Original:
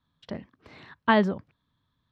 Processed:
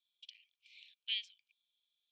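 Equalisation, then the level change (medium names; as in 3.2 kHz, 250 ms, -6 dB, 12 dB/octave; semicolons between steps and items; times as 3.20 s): rippled Chebyshev high-pass 2.3 kHz, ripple 6 dB; distance through air 110 m; +4.0 dB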